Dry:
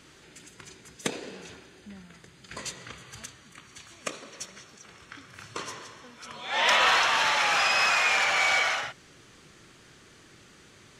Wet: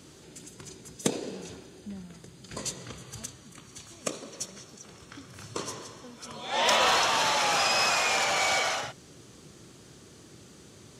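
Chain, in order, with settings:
high-pass filter 61 Hz
parametric band 1,900 Hz −12 dB 2 octaves
level +6 dB

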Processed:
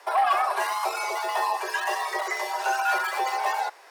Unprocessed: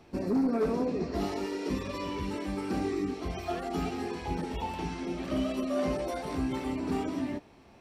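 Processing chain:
wrong playback speed 7.5 ips tape played at 15 ips
frequency shifter +260 Hz
high-pass filter 560 Hz 12 dB per octave
level +6.5 dB

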